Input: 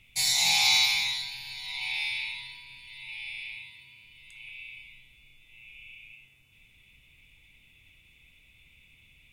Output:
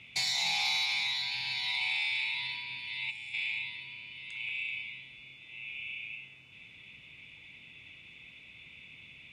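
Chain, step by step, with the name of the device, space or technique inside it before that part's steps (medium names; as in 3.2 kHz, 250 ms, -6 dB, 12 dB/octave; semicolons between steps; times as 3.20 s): AM radio (band-pass 140–4400 Hz; compression 4:1, threshold -38 dBFS, peak gain reduction 14 dB; saturation -29 dBFS, distortion -24 dB); time-frequency box 3.10–3.34 s, 460–5300 Hz -10 dB; trim +8.5 dB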